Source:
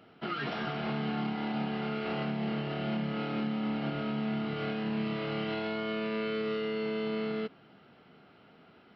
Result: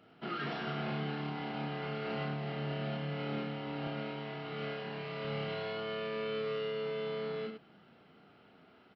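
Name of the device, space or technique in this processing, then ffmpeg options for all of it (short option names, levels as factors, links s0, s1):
slapback doubling: -filter_complex "[0:a]asplit=3[s0][s1][s2];[s1]adelay=35,volume=0.668[s3];[s2]adelay=103,volume=0.447[s4];[s0][s3][s4]amix=inputs=3:normalize=0,asettb=1/sr,asplit=3[s5][s6][s7];[s5]atrim=end=3.874[s8];[s6]atrim=start=3.87:end=5.25,asetpts=PTS-STARTPTS,afade=t=in:d=0.004:c=qsin,afade=t=out:st=1.376:d=0.004:c=qsin,highpass=f=230:p=1[s9];[s7]atrim=start=5.246[s10];[s8][s9]acrossfade=d=0.004:c1=hsin:c2=qsin[s11];[s11][s10]acrossfade=d=0.004:c1=qsin:c2=hsin,volume=0.562"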